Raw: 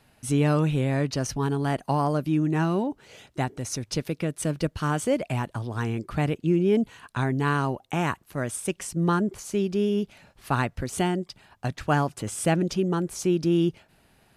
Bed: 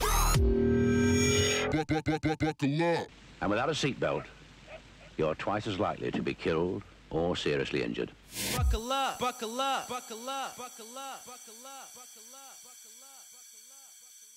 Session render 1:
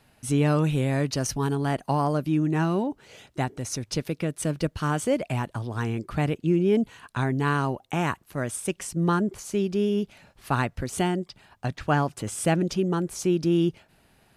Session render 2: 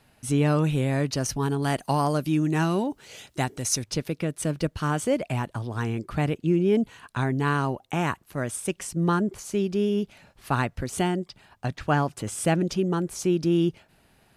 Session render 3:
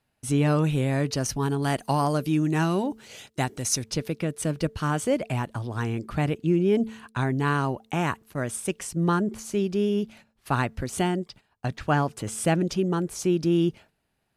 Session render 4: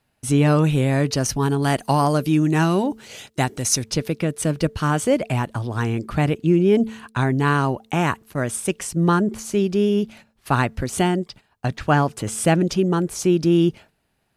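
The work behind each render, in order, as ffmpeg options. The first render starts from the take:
-filter_complex "[0:a]asettb=1/sr,asplit=3[s0][s1][s2];[s0]atrim=end=0.644[s3];[s1]atrim=start=0.64:end=1.55,asetpts=PTS-STARTPTS,afade=t=in:d=0.004:c=qsin,afade=t=out:st=0.906:d=0.004:c=qsin,highshelf=f=7100:g=7.5[s4];[s2]atrim=start=1.546[s5];[s3][s4]acrossfade=d=0.004:c1=hsin:c2=qsin[s6];[s6][s5]acrossfade=d=0.004:c1=qsin:c2=hsin,asettb=1/sr,asplit=3[s7][s8][s9];[s7]atrim=end=11.164[s10];[s8]atrim=start=11.16:end=12.13,asetpts=PTS-STARTPTS,afade=t=in:d=0.004:c=qsin,afade=t=out:st=0.966:d=0.004:c=qsin,acrossover=split=5800[s11][s12];[s12]acompressor=threshold=0.00158:ratio=4:attack=1:release=60[s13];[s11][s13]amix=inputs=2:normalize=0[s14];[s9]atrim=start=12.126[s15];[s10][s14]acrossfade=d=0.004:c1=hsin:c2=qsin[s16];[s16][s15]acrossfade=d=0.004:c1=qsin:c2=hsin"
-filter_complex "[0:a]asettb=1/sr,asplit=3[s0][s1][s2];[s0]atrim=end=1.624[s3];[s1]atrim=start=1.62:end=3.84,asetpts=PTS-STARTPTS,afade=t=in:d=0.004:c=qsin,afade=t=out:st=2.216:d=0.004:c=qsin,highshelf=f=2900:g=9.5[s4];[s2]atrim=start=3.836[s5];[s3][s4]acrossfade=d=0.004:c1=hsin:c2=qsin[s6];[s6][s5]acrossfade=d=0.004:c1=qsin:c2=hsin"
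-af "agate=range=0.178:threshold=0.00447:ratio=16:detection=peak,bandreject=f=221.5:t=h:w=4,bandreject=f=443:t=h:w=4"
-af "volume=1.88"

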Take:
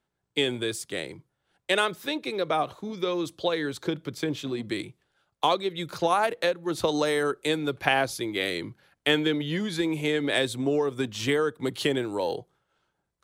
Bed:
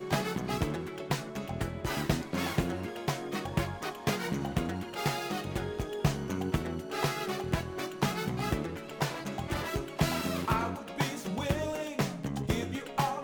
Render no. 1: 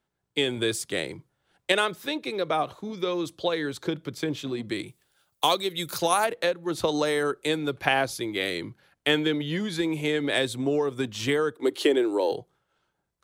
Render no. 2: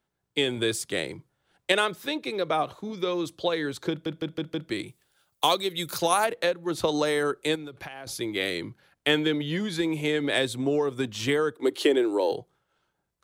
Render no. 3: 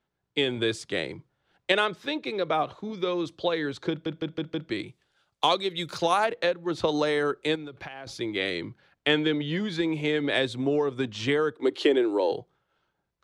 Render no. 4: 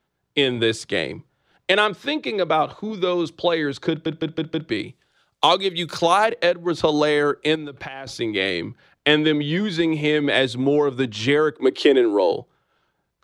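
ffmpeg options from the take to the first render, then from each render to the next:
-filter_complex "[0:a]asplit=3[s0][s1][s2];[s0]afade=t=out:st=4.86:d=0.02[s3];[s1]aemphasis=mode=production:type=75fm,afade=t=in:st=4.86:d=0.02,afade=t=out:st=6.23:d=0.02[s4];[s2]afade=t=in:st=6.23:d=0.02[s5];[s3][s4][s5]amix=inputs=3:normalize=0,asettb=1/sr,asplit=3[s6][s7][s8];[s6]atrim=end=11.564[s9];[s7]atrim=start=11.56:end=12.32,asetpts=PTS-STARTPTS,afade=t=in:d=0.004:c=qsin,afade=t=out:st=0.756:d=0.004:c=qsin,lowshelf=f=230:t=q:w=3:g=-13[s10];[s8]atrim=start=12.316[s11];[s9][s10]acrossfade=d=0.004:c1=hsin:c2=qsin[s12];[s12][s11]acrossfade=d=0.004:c1=qsin:c2=hsin,asplit=3[s13][s14][s15];[s13]atrim=end=0.572[s16];[s14]atrim=start=0.568:end=1.722,asetpts=PTS-STARTPTS,volume=1.5[s17];[s15]atrim=start=1.718[s18];[s16][s17]acrossfade=d=0.004:c1=hsin:c2=hsin[s19];[s19][s18]acrossfade=d=0.004:c1=hsin:c2=hsin"
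-filter_complex "[0:a]asettb=1/sr,asplit=3[s0][s1][s2];[s0]atrim=end=7.554[s3];[s1]atrim=start=7.55:end=8.07,asetpts=PTS-STARTPTS,afade=t=in:d=0.004:c=qsin,afade=t=out:st=0.516:d=0.004:c=qsin,acompressor=threshold=0.0178:ratio=16:attack=3.2:release=140:knee=1:detection=peak[s4];[s2]atrim=start=8.066[s5];[s3][s4]acrossfade=d=0.004:c1=hsin:c2=qsin[s6];[s6][s5]acrossfade=d=0.004:c1=qsin:c2=hsin,asplit=6[s7][s8][s9][s10][s11][s12];[s7]atrim=end=4.062[s13];[s8]atrim=start=3.898:end=4.062[s14];[s9]atrim=start=3.898:end=4.062[s15];[s10]atrim=start=3.898:end=4.062[s16];[s11]atrim=start=3.898:end=4.062[s17];[s12]atrim=start=4.698[s18];[s13][s14]acrossfade=d=0.004:c1=hsin:c2=hsin[s19];[s19][s15]acrossfade=d=0.004:c1=hsin:c2=hsin[s20];[s20][s16]acrossfade=d=0.004:c1=hsin:c2=hsin[s21];[s21][s17]acrossfade=d=0.004:c1=hsin:c2=hsin[s22];[s22][s18]acrossfade=d=0.004:c1=hsin:c2=hsin"
-af "lowpass=4900"
-af "volume=2.11,alimiter=limit=0.794:level=0:latency=1"

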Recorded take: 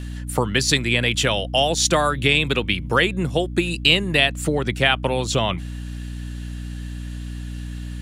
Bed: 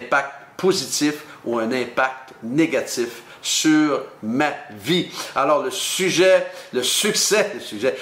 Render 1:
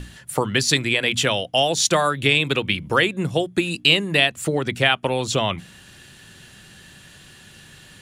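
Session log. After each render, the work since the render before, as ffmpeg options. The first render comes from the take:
-af "bandreject=f=60:t=h:w=6,bandreject=f=120:t=h:w=6,bandreject=f=180:t=h:w=6,bandreject=f=240:t=h:w=6,bandreject=f=300:t=h:w=6"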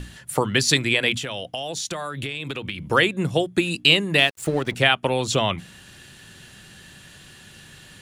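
-filter_complex "[0:a]asettb=1/sr,asplit=3[s0][s1][s2];[s0]atrim=end=1.154[s3];[s1]atrim=start=1.15:end=2.89,asetpts=PTS-STARTPTS,afade=t=in:d=0.004:c=qsin,afade=t=out:st=1.736:d=0.004:c=qsin,acompressor=threshold=0.0562:ratio=16:attack=3.2:release=140:knee=1:detection=peak[s4];[s2]atrim=start=2.886[s5];[s3][s4]acrossfade=d=0.004:c1=hsin:c2=qsin[s6];[s6][s5]acrossfade=d=0.004:c1=qsin:c2=hsin,asettb=1/sr,asplit=3[s7][s8][s9];[s7]atrim=end=4.184[s10];[s8]atrim=start=4.18:end=4.75,asetpts=PTS-STARTPTS,afade=t=in:d=0.004:c=qsin,afade=t=out:st=0.566:d=0.004:c=qsin,aeval=exprs='sgn(val(0))*max(abs(val(0))-0.0133,0)':c=same[s11];[s9]atrim=start=4.746[s12];[s10][s11]acrossfade=d=0.004:c1=hsin:c2=qsin[s13];[s13][s12]acrossfade=d=0.004:c1=qsin:c2=hsin"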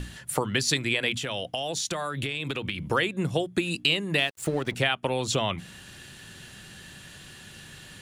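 -af "acompressor=threshold=0.0501:ratio=2"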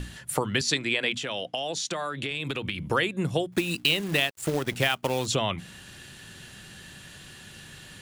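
-filter_complex "[0:a]asettb=1/sr,asplit=3[s0][s1][s2];[s0]atrim=end=0.614[s3];[s1]atrim=start=0.61:end=2.31,asetpts=PTS-STARTPTS,afade=t=in:d=0.004:c=qsin,afade=t=out:st=1.696:d=0.004:c=qsin,highpass=170,lowpass=7600[s4];[s2]atrim=start=2.306[s5];[s3][s4]acrossfade=d=0.004:c1=hsin:c2=qsin[s6];[s6][s5]acrossfade=d=0.004:c1=qsin:c2=hsin,asettb=1/sr,asplit=3[s7][s8][s9];[s7]atrim=end=3.524[s10];[s8]atrim=start=3.52:end=5.26,asetpts=PTS-STARTPTS,afade=t=in:d=0.004:c=qsin,afade=t=out:st=1.736:d=0.004:c=qsin,acrusher=bits=3:mode=log:mix=0:aa=0.000001[s11];[s9]atrim=start=5.256[s12];[s10][s11]acrossfade=d=0.004:c1=hsin:c2=qsin[s13];[s13][s12]acrossfade=d=0.004:c1=qsin:c2=hsin"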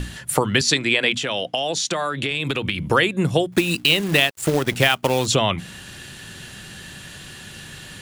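-af "volume=2.37,alimiter=limit=0.794:level=0:latency=1"

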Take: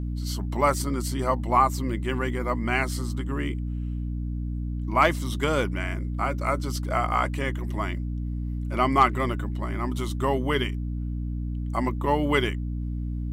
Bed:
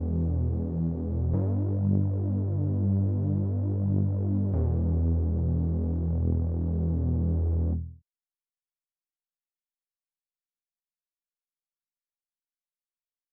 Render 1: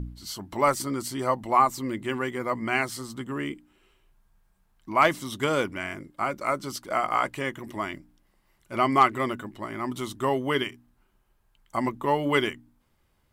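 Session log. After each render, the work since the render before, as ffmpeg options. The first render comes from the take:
-af "bandreject=f=60:t=h:w=4,bandreject=f=120:t=h:w=4,bandreject=f=180:t=h:w=4,bandreject=f=240:t=h:w=4,bandreject=f=300:t=h:w=4"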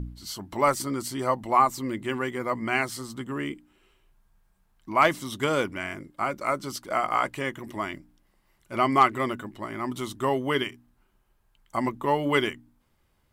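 -af anull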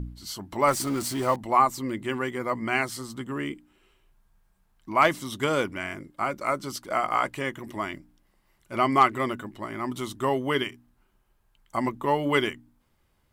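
-filter_complex "[0:a]asettb=1/sr,asplit=3[s0][s1][s2];[s0]atrim=end=0.684[s3];[s1]atrim=start=0.68:end=1.36,asetpts=PTS-STARTPTS,afade=t=in:d=0.004:c=qsin,afade=t=out:st=0.676:d=0.004:c=qsin,aeval=exprs='val(0)+0.5*0.0211*sgn(val(0))':c=same[s4];[s2]atrim=start=1.356[s5];[s3][s4]acrossfade=d=0.004:c1=hsin:c2=qsin[s6];[s6][s5]acrossfade=d=0.004:c1=qsin:c2=hsin"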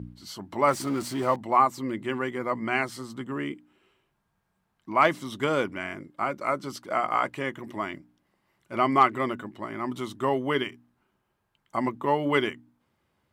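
-af "highpass=110,highshelf=f=5100:g=-9.5"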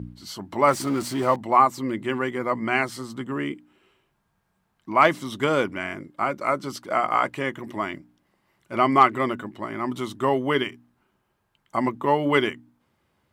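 -af "volume=1.5"

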